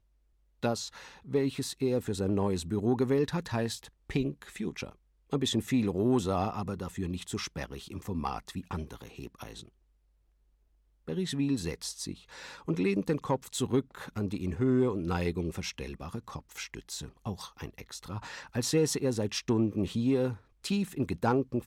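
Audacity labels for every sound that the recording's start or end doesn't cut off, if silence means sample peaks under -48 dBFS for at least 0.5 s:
0.630000	9.680000	sound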